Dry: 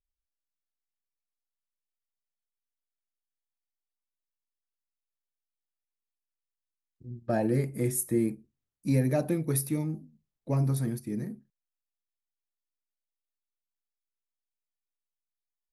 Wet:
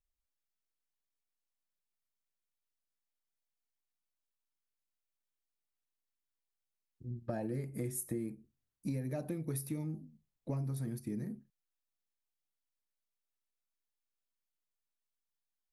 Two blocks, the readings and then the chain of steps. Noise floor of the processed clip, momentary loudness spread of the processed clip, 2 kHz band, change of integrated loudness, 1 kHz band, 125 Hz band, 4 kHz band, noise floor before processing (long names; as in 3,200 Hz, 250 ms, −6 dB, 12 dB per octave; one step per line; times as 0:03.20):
below −85 dBFS, 11 LU, −12.0 dB, −10.5 dB, −11.5 dB, −9.5 dB, −10.5 dB, below −85 dBFS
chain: low-shelf EQ 220 Hz +3 dB
downward compressor 6 to 1, threshold −33 dBFS, peak gain reduction 14 dB
level −2 dB